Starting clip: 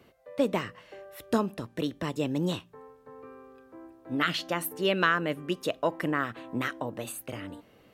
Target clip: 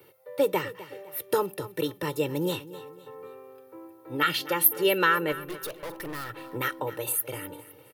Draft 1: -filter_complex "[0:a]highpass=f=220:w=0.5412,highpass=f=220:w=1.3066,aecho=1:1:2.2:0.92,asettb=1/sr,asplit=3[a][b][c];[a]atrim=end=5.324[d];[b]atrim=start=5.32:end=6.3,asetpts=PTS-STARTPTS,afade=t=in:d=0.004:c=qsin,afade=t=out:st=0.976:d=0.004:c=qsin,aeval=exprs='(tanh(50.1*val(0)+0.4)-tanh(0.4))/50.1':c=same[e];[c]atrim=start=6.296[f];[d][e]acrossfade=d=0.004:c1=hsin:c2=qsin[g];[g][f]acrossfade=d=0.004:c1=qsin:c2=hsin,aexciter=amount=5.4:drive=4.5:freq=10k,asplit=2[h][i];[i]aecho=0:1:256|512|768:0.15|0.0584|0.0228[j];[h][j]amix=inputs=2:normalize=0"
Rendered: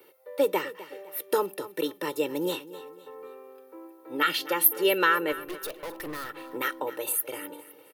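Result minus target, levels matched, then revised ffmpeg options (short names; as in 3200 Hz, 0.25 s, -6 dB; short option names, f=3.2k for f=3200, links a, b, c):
125 Hz band -11.5 dB
-filter_complex "[0:a]highpass=f=110:w=0.5412,highpass=f=110:w=1.3066,aecho=1:1:2.2:0.92,asettb=1/sr,asplit=3[a][b][c];[a]atrim=end=5.324[d];[b]atrim=start=5.32:end=6.3,asetpts=PTS-STARTPTS,afade=t=in:d=0.004:c=qsin,afade=t=out:st=0.976:d=0.004:c=qsin,aeval=exprs='(tanh(50.1*val(0)+0.4)-tanh(0.4))/50.1':c=same[e];[c]atrim=start=6.296[f];[d][e]acrossfade=d=0.004:c1=hsin:c2=qsin[g];[g][f]acrossfade=d=0.004:c1=qsin:c2=hsin,aexciter=amount=5.4:drive=4.5:freq=10k,asplit=2[h][i];[i]aecho=0:1:256|512|768:0.15|0.0584|0.0228[j];[h][j]amix=inputs=2:normalize=0"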